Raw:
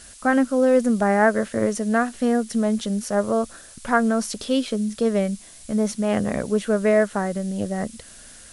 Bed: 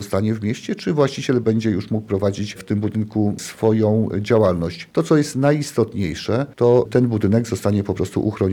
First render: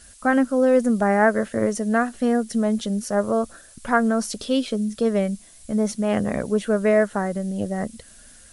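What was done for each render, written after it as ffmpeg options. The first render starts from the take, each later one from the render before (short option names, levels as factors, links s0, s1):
-af "afftdn=nr=6:nf=-45"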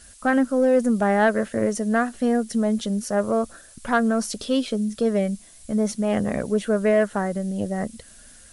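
-af "asoftclip=type=tanh:threshold=0.376"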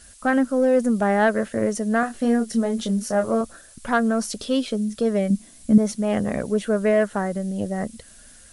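-filter_complex "[0:a]asettb=1/sr,asplit=3[s0][s1][s2];[s0]atrim=end=2.004[s3];[s1]atrim=start=2:end=3.41,asetpts=PTS-STARTPTS,afade=t=in:d=0.004:c=qsin,afade=t=out:st=1.406:d=0.004:c=qsin,asplit=2[s4][s5];[s5]adelay=26,volume=0.501[s6];[s4][s6]amix=inputs=2:normalize=0,atrim=end_sample=62181[s7];[s2]atrim=start=3.406[s8];[s3][s7]acrossfade=d=0.004:c1=hsin:c2=qsin[s9];[s9][s8]acrossfade=d=0.004:c1=qsin:c2=hsin,asettb=1/sr,asplit=3[s10][s11][s12];[s10]atrim=end=5.304[s13];[s11]atrim=start=5.3:end=5.78,asetpts=PTS-STARTPTS,afade=t=in:d=0.004:c=qsin,afade=t=out:st=0.476:d=0.004:c=qsin,equalizer=f=240:w=1.5:g=12.5[s14];[s12]atrim=start=5.776[s15];[s13][s14]acrossfade=d=0.004:c1=hsin:c2=qsin[s16];[s16][s15]acrossfade=d=0.004:c1=qsin:c2=hsin"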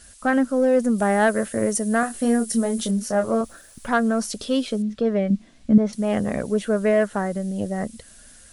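-filter_complex "[0:a]asettb=1/sr,asplit=3[s0][s1][s2];[s0]atrim=end=0.984[s3];[s1]atrim=start=0.98:end=2.91,asetpts=PTS-STARTPTS,afade=t=in:d=0.004:c=qsin,afade=t=out:st=1.926:d=0.004:c=qsin,equalizer=f=10000:t=o:w=0.92:g=11[s4];[s2]atrim=start=2.906[s5];[s3][s4]acrossfade=d=0.004:c1=hsin:c2=qsin[s6];[s6][s5]acrossfade=d=0.004:c1=qsin:c2=hsin,asettb=1/sr,asplit=3[s7][s8][s9];[s7]atrim=end=3.434[s10];[s8]atrim=start=3.43:end=3.89,asetpts=PTS-STARTPTS,afade=t=in:d=0.004:c=qsin,afade=t=out:st=0.456:d=0.004:c=qsin,aeval=exprs='val(0)*gte(abs(val(0)),0.00266)':c=same[s11];[s9]atrim=start=3.886[s12];[s10][s11]acrossfade=d=0.004:c1=hsin:c2=qsin[s13];[s13][s12]acrossfade=d=0.004:c1=qsin:c2=hsin,asettb=1/sr,asplit=3[s14][s15][s16];[s14]atrim=end=4.824[s17];[s15]atrim=start=4.82:end=5.93,asetpts=PTS-STARTPTS,afade=t=in:d=0.004:c=qsin,afade=t=out:st=1.106:d=0.004:c=qsin,lowpass=3400[s18];[s16]atrim=start=5.926[s19];[s17][s18]acrossfade=d=0.004:c1=hsin:c2=qsin[s20];[s20][s19]acrossfade=d=0.004:c1=qsin:c2=hsin"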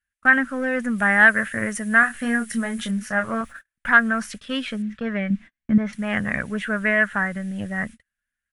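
-af "firequalizer=gain_entry='entry(150,0);entry(400,-11);entry(1700,14);entry(4400,-7)':delay=0.05:min_phase=1,agate=range=0.0112:threshold=0.0178:ratio=16:detection=peak"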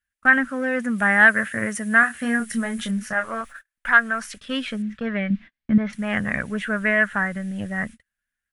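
-filter_complex "[0:a]asettb=1/sr,asplit=3[s0][s1][s2];[s0]atrim=end=0.494[s3];[s1]atrim=start=0.49:end=2.4,asetpts=PTS-STARTPTS,afade=t=in:d=0.004:c=qsin,afade=t=out:st=1.906:d=0.004:c=qsin,highpass=71[s4];[s2]atrim=start=2.396[s5];[s3][s4]acrossfade=d=0.004:c1=hsin:c2=qsin[s6];[s6][s5]acrossfade=d=0.004:c1=qsin:c2=hsin,asettb=1/sr,asplit=3[s7][s8][s9];[s7]atrim=end=3.134[s10];[s8]atrim=start=3.13:end=4.37,asetpts=PTS-STARTPTS,afade=t=in:d=0.004:c=qsin,afade=t=out:st=1.236:d=0.004:c=qsin,equalizer=f=130:t=o:w=2.2:g=-14[s11];[s9]atrim=start=4.366[s12];[s10][s11]acrossfade=d=0.004:c1=hsin:c2=qsin[s13];[s13][s12]acrossfade=d=0.004:c1=qsin:c2=hsin,asettb=1/sr,asplit=3[s14][s15][s16];[s14]atrim=end=5.074[s17];[s15]atrim=start=5.07:end=5.9,asetpts=PTS-STARTPTS,afade=t=in:d=0.004:c=qsin,afade=t=out:st=0.826:d=0.004:c=qsin,highshelf=f=6100:t=q:w=1.5:g=-13[s18];[s16]atrim=start=5.896[s19];[s17][s18]acrossfade=d=0.004:c1=hsin:c2=qsin[s20];[s20][s19]acrossfade=d=0.004:c1=qsin:c2=hsin"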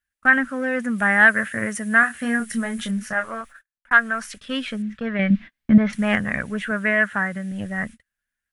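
-filter_complex "[0:a]asettb=1/sr,asplit=3[s0][s1][s2];[s0]atrim=end=5.194[s3];[s1]atrim=start=5.19:end=6.16,asetpts=PTS-STARTPTS,afade=t=in:d=0.004:c=qsin,afade=t=out:st=0.966:d=0.004:c=qsin,acontrast=31[s4];[s2]atrim=start=6.156[s5];[s3][s4]acrossfade=d=0.004:c1=hsin:c2=qsin[s6];[s6][s5]acrossfade=d=0.004:c1=qsin:c2=hsin,asettb=1/sr,asplit=3[s7][s8][s9];[s7]atrim=end=6.714[s10];[s8]atrim=start=6.71:end=7.52,asetpts=PTS-STARTPTS,afade=t=in:d=0.004:c=qsin,afade=t=out:st=0.806:d=0.004:c=qsin,highpass=85[s11];[s9]atrim=start=7.516[s12];[s10][s11]acrossfade=d=0.004:c1=hsin:c2=qsin[s13];[s13][s12]acrossfade=d=0.004:c1=qsin:c2=hsin,asplit=2[s14][s15];[s14]atrim=end=3.91,asetpts=PTS-STARTPTS,afade=t=out:st=3.2:d=0.71[s16];[s15]atrim=start=3.91,asetpts=PTS-STARTPTS,afade=t=in:d=0.004:c=hsin[s17];[s16][s17]concat=n=2:v=0:a=1"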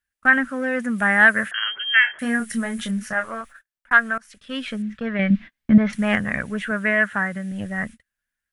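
-filter_complex "[0:a]asettb=1/sr,asplit=3[s0][s1][s2];[s0]atrim=end=1.514[s3];[s1]atrim=start=1.51:end=2.19,asetpts=PTS-STARTPTS,afade=t=in:d=0.004:c=qsin,afade=t=out:st=0.676:d=0.004:c=qsin,lowpass=f=2900:t=q:w=0.5098,lowpass=f=2900:t=q:w=0.6013,lowpass=f=2900:t=q:w=0.9,lowpass=f=2900:t=q:w=2.563,afreqshift=-3400[s4];[s2]atrim=start=2.186[s5];[s3][s4]acrossfade=d=0.004:c1=hsin:c2=qsin[s6];[s6][s5]acrossfade=d=0.004:c1=qsin:c2=hsin,asplit=2[s7][s8];[s7]atrim=end=4.18,asetpts=PTS-STARTPTS,afade=t=out:st=4.176:d=0.004:c=hsin:silence=0.0668344[s9];[s8]atrim=start=4.18,asetpts=PTS-STARTPTS,afade=t=in:d=0.54:silence=0.0668344[s10];[s9][s10]concat=n=2:v=0:a=1"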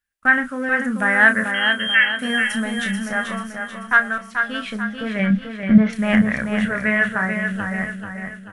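-filter_complex "[0:a]asplit=2[s0][s1];[s1]adelay=32,volume=0.355[s2];[s0][s2]amix=inputs=2:normalize=0,aecho=1:1:437|874|1311|1748|2185|2622:0.501|0.231|0.106|0.0488|0.0224|0.0103"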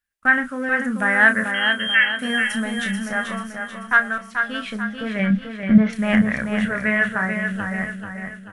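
-af "volume=0.891"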